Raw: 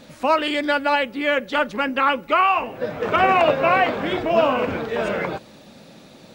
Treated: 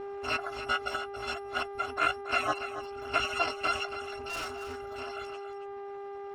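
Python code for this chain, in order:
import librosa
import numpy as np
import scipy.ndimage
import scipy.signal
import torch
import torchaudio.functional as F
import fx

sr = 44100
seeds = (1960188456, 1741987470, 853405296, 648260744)

p1 = fx.bit_reversed(x, sr, seeds[0], block=256)
p2 = fx.low_shelf(p1, sr, hz=120.0, db=-10.0)
p3 = fx.dmg_crackle(p2, sr, seeds[1], per_s=480.0, level_db=-38.0)
p4 = fx.low_shelf(p3, sr, hz=350.0, db=-5.0)
p5 = fx.doubler(p4, sr, ms=16.0, db=-6.5)
p6 = fx.level_steps(p5, sr, step_db=18)
p7 = p5 + F.gain(torch.from_numpy(p6), -3.0).numpy()
p8 = fx.dereverb_blind(p7, sr, rt60_s=1.1)
p9 = fx.dmg_buzz(p8, sr, base_hz=400.0, harmonics=31, level_db=-39.0, tilt_db=-8, odd_only=False)
p10 = scipy.signal.sosfilt(scipy.signal.butter(2, 1200.0, 'lowpass', fs=sr, output='sos'), p9)
p11 = fx.clip_hard(p10, sr, threshold_db=-33.5, at=(4.28, 5.0))
y = p11 + fx.echo_single(p11, sr, ms=279, db=-11.0, dry=0)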